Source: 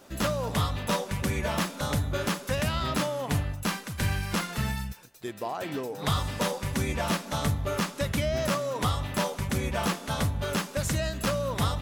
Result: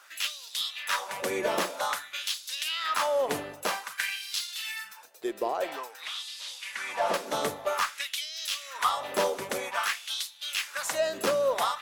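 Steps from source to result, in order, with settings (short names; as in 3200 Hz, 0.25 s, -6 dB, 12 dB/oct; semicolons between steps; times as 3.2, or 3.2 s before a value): 6.03–7.14 delta modulation 64 kbps, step -46.5 dBFS; LFO high-pass sine 0.51 Hz 380–4000 Hz; added harmonics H 4 -36 dB, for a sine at -13 dBFS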